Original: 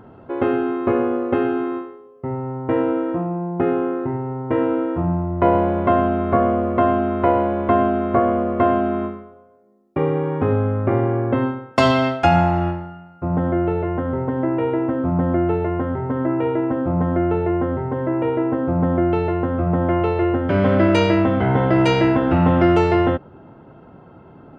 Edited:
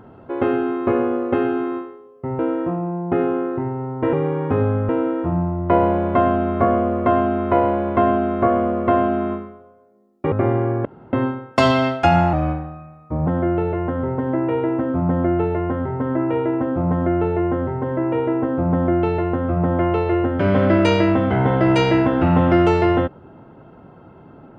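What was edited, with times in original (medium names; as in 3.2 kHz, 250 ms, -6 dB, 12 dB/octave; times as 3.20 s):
2.39–2.87 s: delete
10.04–10.80 s: move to 4.61 s
11.33 s: insert room tone 0.28 s
12.53–13.36 s: speed 89%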